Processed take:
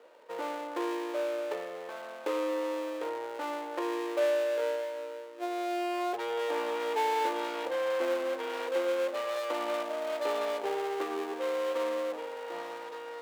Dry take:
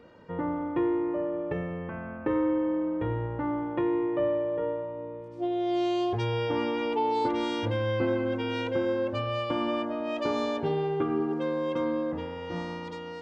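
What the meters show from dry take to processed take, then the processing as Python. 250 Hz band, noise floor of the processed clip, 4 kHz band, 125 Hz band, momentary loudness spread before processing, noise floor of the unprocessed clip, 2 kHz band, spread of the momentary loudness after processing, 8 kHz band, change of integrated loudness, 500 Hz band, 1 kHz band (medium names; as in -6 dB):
-11.0 dB, -43 dBFS, -2.0 dB, under -35 dB, 8 LU, -40 dBFS, 0.0 dB, 9 LU, no reading, -3.5 dB, -1.5 dB, -1.0 dB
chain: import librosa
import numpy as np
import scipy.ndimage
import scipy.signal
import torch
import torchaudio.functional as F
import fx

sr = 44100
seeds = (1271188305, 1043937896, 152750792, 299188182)

y = fx.dead_time(x, sr, dead_ms=0.22)
y = scipy.signal.sosfilt(scipy.signal.butter(4, 490.0, 'highpass', fs=sr, output='sos'), y)
y = fx.tilt_eq(y, sr, slope=-2.5)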